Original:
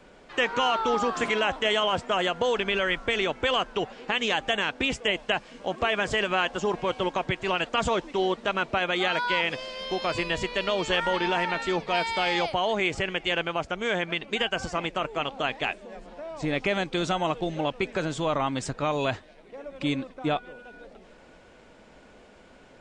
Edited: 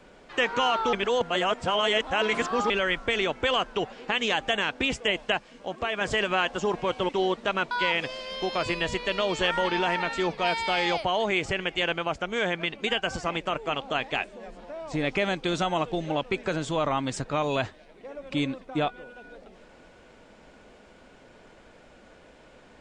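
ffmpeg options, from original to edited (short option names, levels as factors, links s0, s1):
-filter_complex "[0:a]asplit=7[s0][s1][s2][s3][s4][s5][s6];[s0]atrim=end=0.932[s7];[s1]atrim=start=0.928:end=2.702,asetpts=PTS-STARTPTS,areverse[s8];[s2]atrim=start=2.698:end=5.372[s9];[s3]atrim=start=5.368:end=6.012,asetpts=PTS-STARTPTS,volume=0.631[s10];[s4]atrim=start=6.008:end=7.092[s11];[s5]atrim=start=8.088:end=8.712[s12];[s6]atrim=start=9.198[s13];[s7][s8]acrossfade=d=0.004:c1=hsin:c2=hsin[s14];[s14][s9]acrossfade=d=0.004:c1=hsin:c2=hsin[s15];[s15][s10]acrossfade=d=0.004:c1=hsin:c2=hsin[s16];[s16][s11]acrossfade=d=0.004:c1=hsin:c2=hsin[s17];[s17][s12]acrossfade=d=0.004:c1=hsin:c2=hsin[s18];[s18][s13]acrossfade=d=0.004:c1=hsin:c2=hsin"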